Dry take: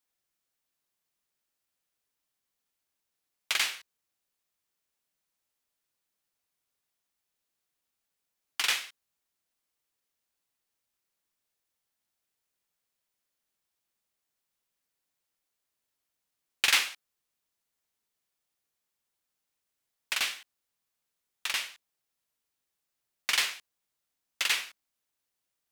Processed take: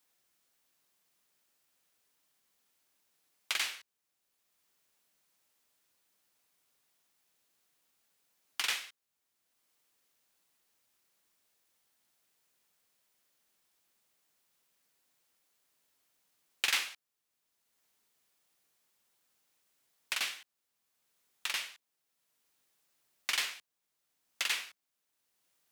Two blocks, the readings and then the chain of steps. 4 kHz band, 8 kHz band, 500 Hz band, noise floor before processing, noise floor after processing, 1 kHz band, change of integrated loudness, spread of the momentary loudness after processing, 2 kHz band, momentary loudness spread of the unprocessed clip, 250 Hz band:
-5.5 dB, -5.5 dB, -5.0 dB, -85 dBFS, -84 dBFS, -5.0 dB, -5.5 dB, 17 LU, -5.5 dB, 19 LU, -5.5 dB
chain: three bands compressed up and down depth 40%; trim -4 dB

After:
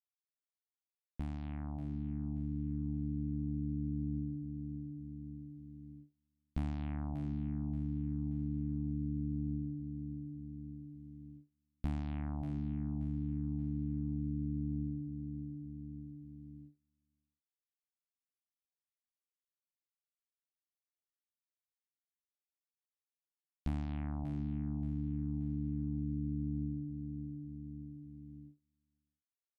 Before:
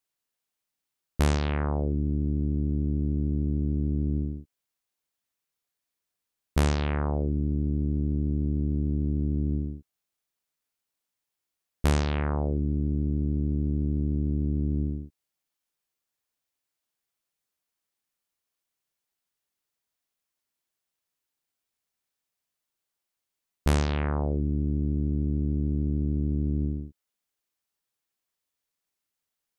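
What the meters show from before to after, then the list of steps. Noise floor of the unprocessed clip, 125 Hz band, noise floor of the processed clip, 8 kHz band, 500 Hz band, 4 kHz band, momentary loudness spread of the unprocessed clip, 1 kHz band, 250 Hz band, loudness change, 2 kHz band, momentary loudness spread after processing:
under -85 dBFS, -10.5 dB, under -85 dBFS, under -25 dB, -21.5 dB, under -20 dB, 5 LU, -16.5 dB, -8.0 dB, -11.5 dB, -20.5 dB, 13 LU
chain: fade-in on the opening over 2.92 s; FFT filter 110 Hz 0 dB, 300 Hz +7 dB, 440 Hz -20 dB, 730 Hz +9 dB, 2.3 kHz +1 dB, 6.1 kHz -16 dB; feedback delay 579 ms, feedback 41%, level -11 dB; gate -52 dBFS, range -26 dB; compression 2:1, threshold -46 dBFS, peak gain reduction 16 dB; peaking EQ 1.2 kHz -14 dB 2.3 oct; trim +2 dB

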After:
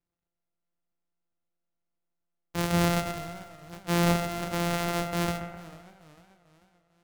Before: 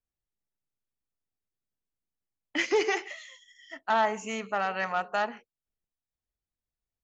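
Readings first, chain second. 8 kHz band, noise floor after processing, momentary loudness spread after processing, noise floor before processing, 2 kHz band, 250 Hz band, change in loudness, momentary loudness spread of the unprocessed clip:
no reading, under -85 dBFS, 18 LU, under -85 dBFS, -3.5 dB, +9.5 dB, +0.5 dB, 16 LU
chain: sorted samples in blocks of 256 samples; transient shaper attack -2 dB, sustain +11 dB; bucket-brigade echo 129 ms, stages 2048, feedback 49%, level -8.5 dB; modulated delay 443 ms, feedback 45%, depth 161 cents, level -20.5 dB

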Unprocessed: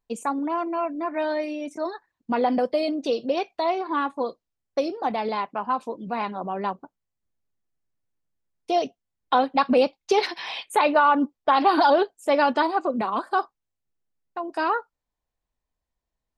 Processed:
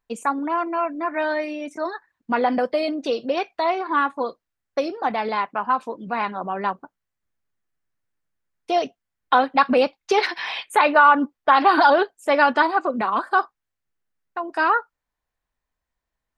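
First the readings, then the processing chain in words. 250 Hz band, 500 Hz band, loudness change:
+0.5 dB, +1.0 dB, +3.0 dB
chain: peaking EQ 1.6 kHz +8.5 dB 1.3 oct

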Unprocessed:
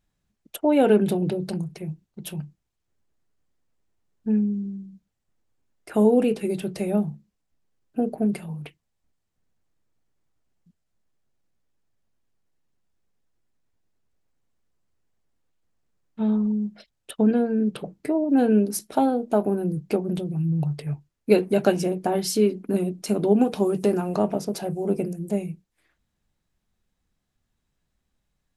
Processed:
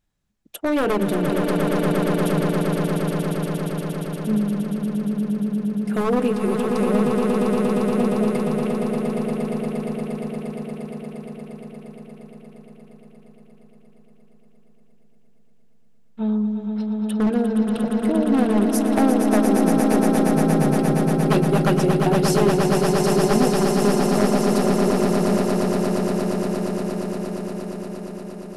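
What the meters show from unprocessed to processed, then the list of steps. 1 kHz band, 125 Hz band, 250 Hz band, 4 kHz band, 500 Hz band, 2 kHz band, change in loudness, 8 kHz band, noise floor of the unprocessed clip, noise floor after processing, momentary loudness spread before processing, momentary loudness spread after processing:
+7.0 dB, +7.0 dB, +5.5 dB, +7.0 dB, +4.0 dB, +9.5 dB, +3.0 dB, +6.5 dB, -78 dBFS, -49 dBFS, 15 LU, 12 LU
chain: wavefolder -14.5 dBFS; echo with a slow build-up 117 ms, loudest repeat 8, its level -6.5 dB

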